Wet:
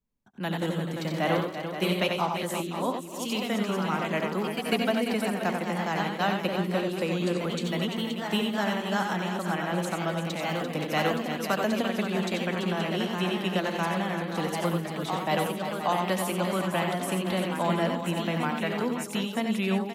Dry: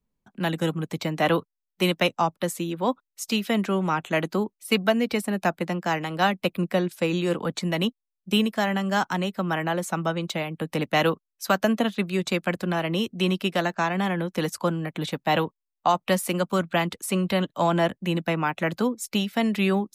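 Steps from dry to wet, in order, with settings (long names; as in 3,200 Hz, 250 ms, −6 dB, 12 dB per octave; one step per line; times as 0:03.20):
delay with pitch and tempo change per echo 118 ms, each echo +1 semitone, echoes 2, each echo −6 dB
multi-tap delay 73/90/253/343/525/725 ms −11/−6/−19.5/−9/−10/−18 dB
level −6 dB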